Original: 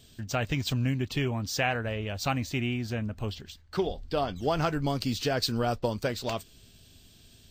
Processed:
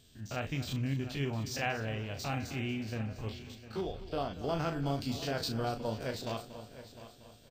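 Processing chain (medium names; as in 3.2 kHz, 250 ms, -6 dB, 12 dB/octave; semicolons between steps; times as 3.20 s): spectrogram pixelated in time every 50 ms; doubling 36 ms -9 dB; multi-head delay 235 ms, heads first and third, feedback 44%, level -15 dB; trim -5.5 dB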